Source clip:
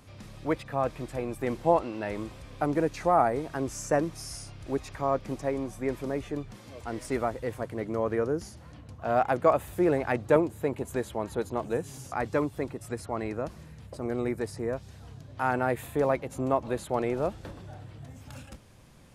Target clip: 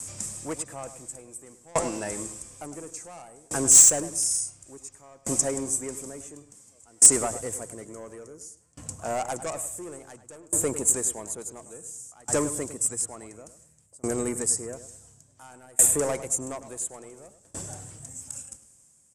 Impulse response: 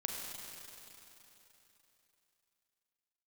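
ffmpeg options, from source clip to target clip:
-filter_complex "[0:a]highpass=f=73:p=1,asoftclip=type=tanh:threshold=0.0794,lowpass=f=8000:t=q:w=4.9,aexciter=amount=13:drive=0.9:freq=5800,asplit=2[s0][s1];[s1]aeval=exprs='(mod(2.51*val(0)+1,2)-1)/2.51':c=same,volume=0.266[s2];[s0][s2]amix=inputs=2:normalize=0,asplit=2[s3][s4];[s4]adelay=103,lowpass=f=2300:p=1,volume=0.316,asplit=2[s5][s6];[s6]adelay=103,lowpass=f=2300:p=1,volume=0.38,asplit=2[s7][s8];[s8]adelay=103,lowpass=f=2300:p=1,volume=0.38,asplit=2[s9][s10];[s10]adelay=103,lowpass=f=2300:p=1,volume=0.38[s11];[s3][s5][s7][s9][s11]amix=inputs=5:normalize=0,aeval=exprs='val(0)*pow(10,-29*if(lt(mod(0.57*n/s,1),2*abs(0.57)/1000),1-mod(0.57*n/s,1)/(2*abs(0.57)/1000),(mod(0.57*n/s,1)-2*abs(0.57)/1000)/(1-2*abs(0.57)/1000))/20)':c=same,volume=1.5"

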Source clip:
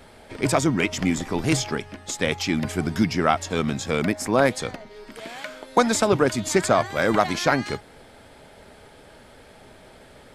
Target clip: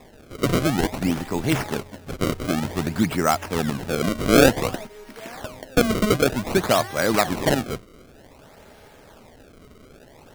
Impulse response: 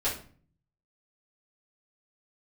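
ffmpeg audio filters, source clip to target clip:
-filter_complex "[0:a]acrusher=samples=29:mix=1:aa=0.000001:lfo=1:lforange=46.4:lforate=0.54,asettb=1/sr,asplit=3[s0][s1][s2];[s0]atrim=end=4.154[s3];[s1]atrim=start=4.15:end=4.87,asetpts=PTS-STARTPTS,afade=t=in:d=0.004:c=qsin,afade=t=out:st=0.716:d=0.004:c=qsin,acontrast=55[s4];[s2]atrim=start=4.866[s5];[s3][s4]acrossfade=d=0.004:c1=hsin:c2=qsin[s6];[s6][s5]acrossfade=d=0.004:c1=qsin:c2=hsin"

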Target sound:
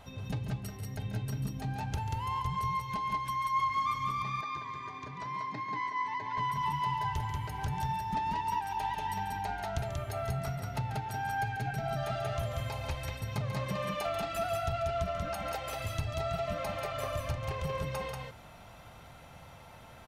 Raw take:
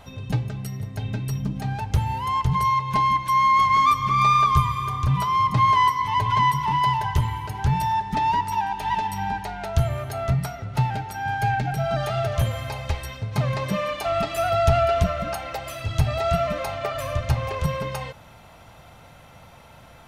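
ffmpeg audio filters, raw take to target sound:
-filter_complex "[0:a]acompressor=threshold=0.0398:ratio=3,asettb=1/sr,asplit=3[s0][s1][s2];[s0]atrim=end=4.224[s3];[s1]atrim=start=4.22:end=6.38,asetpts=PTS-STARTPTS,afade=t=in:d=0.004:c=qsin,afade=t=out:st=2.156:d=0.004:c=qsin,highpass=250,equalizer=f=300:t=q:w=4:g=8,equalizer=f=1200:t=q:w=4:g=-10,equalizer=f=1800:t=q:w=4:g=7,equalizer=f=3100:t=q:w=4:g=-10,equalizer=f=5400:t=q:w=4:g=-4,lowpass=f=5900:w=0.5412,lowpass=f=5900:w=1.3066[s4];[s2]atrim=start=6.376[s5];[s3][s4]acrossfade=d=0.004:c1=hsin:c2=qsin[s6];[s6][s5]acrossfade=d=0.004:c1=qsin:c2=hsin,aecho=1:1:139.9|186.6:0.282|0.708,volume=0.501"

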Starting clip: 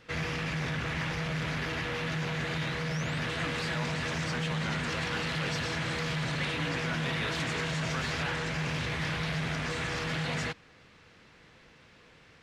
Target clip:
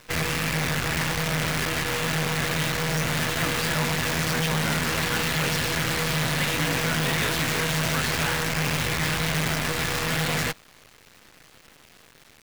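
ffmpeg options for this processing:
-af "acrusher=bits=6:dc=4:mix=0:aa=0.000001,volume=2.11"

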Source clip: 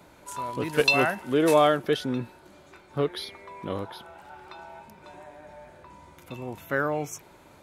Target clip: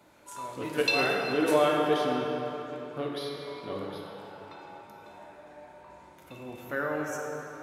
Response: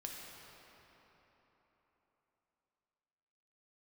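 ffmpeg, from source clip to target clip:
-filter_complex "[0:a]lowshelf=f=110:g=-10[s0];[1:a]atrim=start_sample=2205,asetrate=48510,aresample=44100[s1];[s0][s1]afir=irnorm=-1:irlink=0"

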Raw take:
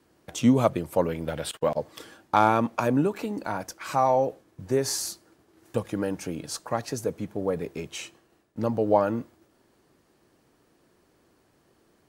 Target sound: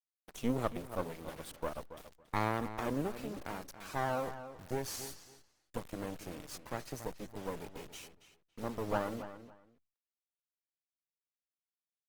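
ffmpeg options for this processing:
-filter_complex "[0:a]asplit=3[s0][s1][s2];[s0]afade=t=out:st=1.92:d=0.02[s3];[s1]lowshelf=f=96:g=-2,afade=t=in:st=1.92:d=0.02,afade=t=out:st=2.37:d=0.02[s4];[s2]afade=t=in:st=2.37:d=0.02[s5];[s3][s4][s5]amix=inputs=3:normalize=0,acrusher=bits=4:dc=4:mix=0:aa=0.000001,aeval=exprs='max(val(0),0)':c=same,asplit=2[s6][s7];[s7]adelay=279,lowpass=f=5000:p=1,volume=0.251,asplit=2[s8][s9];[s9]adelay=279,lowpass=f=5000:p=1,volume=0.19[s10];[s8][s10]amix=inputs=2:normalize=0[s11];[s6][s11]amix=inputs=2:normalize=0,volume=0.376" -ar 48000 -c:a libopus -b:a 20k

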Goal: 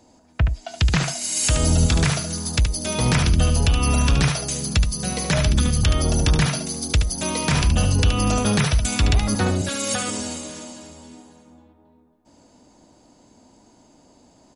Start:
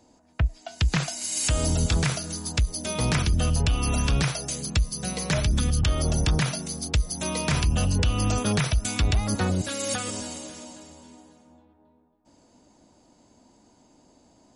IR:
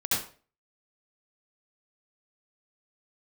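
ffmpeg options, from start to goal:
-af "aecho=1:1:73:0.447,volume=1.58"

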